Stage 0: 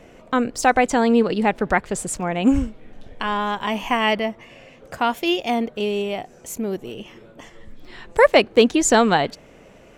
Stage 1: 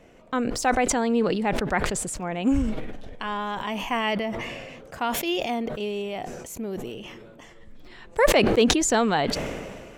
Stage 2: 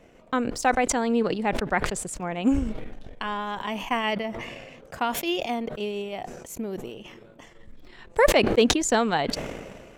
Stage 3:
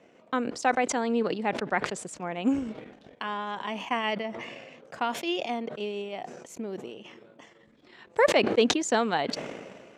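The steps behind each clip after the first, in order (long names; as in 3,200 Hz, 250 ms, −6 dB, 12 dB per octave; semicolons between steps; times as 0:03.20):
level that may fall only so fast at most 31 dB per second; level −6.5 dB
transient designer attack +3 dB, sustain −11 dB; level −1 dB
band-pass filter 180–6,900 Hz; level −2.5 dB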